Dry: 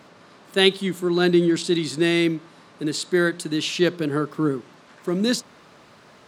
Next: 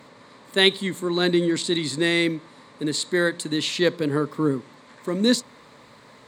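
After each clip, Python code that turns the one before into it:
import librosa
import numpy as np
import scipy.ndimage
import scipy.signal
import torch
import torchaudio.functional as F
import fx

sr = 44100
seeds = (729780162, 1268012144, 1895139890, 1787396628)

y = fx.ripple_eq(x, sr, per_octave=1.0, db=7)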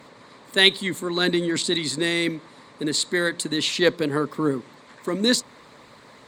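y = fx.hpss(x, sr, part='percussive', gain_db=7)
y = fx.cheby_harmonics(y, sr, harmonics=(6,), levels_db=(-41,), full_scale_db=2.0)
y = F.gain(torch.from_numpy(y), -3.0).numpy()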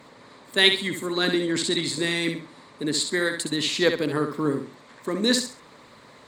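y = fx.echo_feedback(x, sr, ms=66, feedback_pct=28, wet_db=-7.0)
y = F.gain(torch.from_numpy(y), -2.0).numpy()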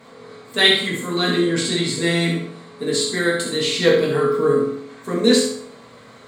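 y = fx.rev_fdn(x, sr, rt60_s=0.66, lf_ratio=1.1, hf_ratio=0.7, size_ms=13.0, drr_db=-5.5)
y = F.gain(torch.from_numpy(y), -1.5).numpy()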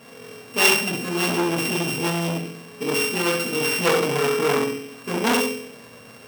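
y = np.r_[np.sort(x[:len(x) // 16 * 16].reshape(-1, 16), axis=1).ravel(), x[len(x) // 16 * 16:]]
y = fx.transformer_sat(y, sr, knee_hz=2200.0)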